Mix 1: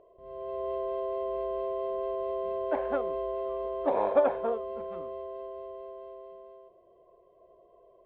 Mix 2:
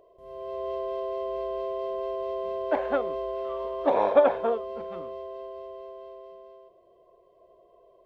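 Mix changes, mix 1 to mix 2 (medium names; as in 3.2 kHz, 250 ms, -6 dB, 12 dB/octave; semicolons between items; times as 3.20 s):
speech +11.5 dB; second sound +3.5 dB; master: remove distance through air 330 m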